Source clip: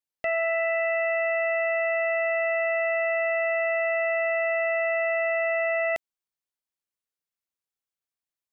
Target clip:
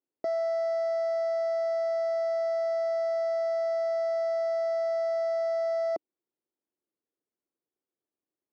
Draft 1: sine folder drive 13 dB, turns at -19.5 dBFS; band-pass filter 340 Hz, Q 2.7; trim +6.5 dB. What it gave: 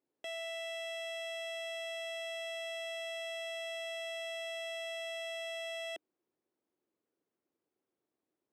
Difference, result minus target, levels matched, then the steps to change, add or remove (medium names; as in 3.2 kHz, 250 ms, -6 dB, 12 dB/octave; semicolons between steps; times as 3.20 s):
sine folder: distortion +21 dB
change: sine folder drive 6 dB, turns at -19.5 dBFS